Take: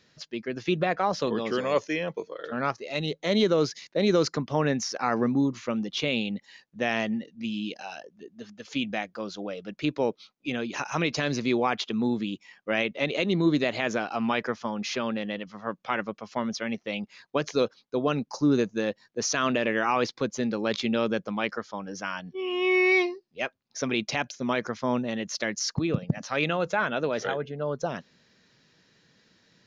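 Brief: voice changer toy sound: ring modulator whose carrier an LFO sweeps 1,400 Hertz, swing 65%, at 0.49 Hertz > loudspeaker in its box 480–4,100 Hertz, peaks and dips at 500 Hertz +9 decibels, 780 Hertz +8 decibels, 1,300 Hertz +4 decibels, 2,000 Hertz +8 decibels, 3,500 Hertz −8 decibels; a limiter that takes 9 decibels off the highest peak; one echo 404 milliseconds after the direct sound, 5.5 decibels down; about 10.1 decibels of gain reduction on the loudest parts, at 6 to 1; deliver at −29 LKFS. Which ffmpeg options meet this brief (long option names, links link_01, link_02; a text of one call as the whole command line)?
ffmpeg -i in.wav -af "acompressor=threshold=-29dB:ratio=6,alimiter=limit=-23.5dB:level=0:latency=1,aecho=1:1:404:0.531,aeval=exprs='val(0)*sin(2*PI*1400*n/s+1400*0.65/0.49*sin(2*PI*0.49*n/s))':channel_layout=same,highpass=480,equalizer=frequency=500:width_type=q:width=4:gain=9,equalizer=frequency=780:width_type=q:width=4:gain=8,equalizer=frequency=1300:width_type=q:width=4:gain=4,equalizer=frequency=2000:width_type=q:width=4:gain=8,equalizer=frequency=3500:width_type=q:width=4:gain=-8,lowpass=frequency=4100:width=0.5412,lowpass=frequency=4100:width=1.3066,volume=3.5dB" out.wav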